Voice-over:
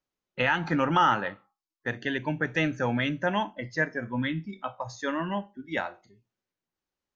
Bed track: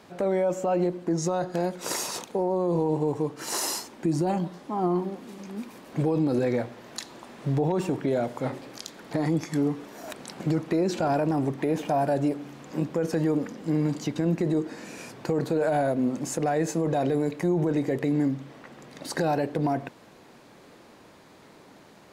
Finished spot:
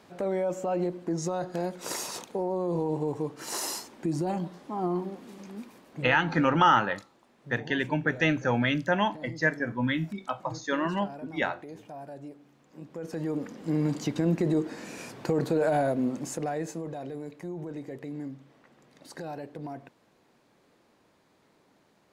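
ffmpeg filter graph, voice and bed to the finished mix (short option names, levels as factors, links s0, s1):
-filter_complex "[0:a]adelay=5650,volume=1.19[s0];[1:a]volume=4.73,afade=t=out:st=5.45:d=0.78:silence=0.199526,afade=t=in:st=12.79:d=1.21:silence=0.133352,afade=t=out:st=15.69:d=1.29:silence=0.237137[s1];[s0][s1]amix=inputs=2:normalize=0"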